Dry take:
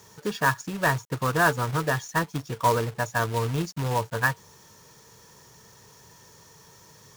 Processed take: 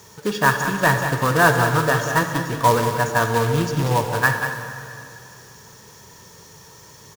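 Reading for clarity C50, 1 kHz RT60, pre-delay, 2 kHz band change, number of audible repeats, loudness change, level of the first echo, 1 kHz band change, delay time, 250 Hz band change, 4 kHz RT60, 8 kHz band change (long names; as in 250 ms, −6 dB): 4.0 dB, 2.5 s, 28 ms, +7.0 dB, 1, +6.5 dB, −8.5 dB, +7.0 dB, 189 ms, +7.0 dB, 2.5 s, +7.0 dB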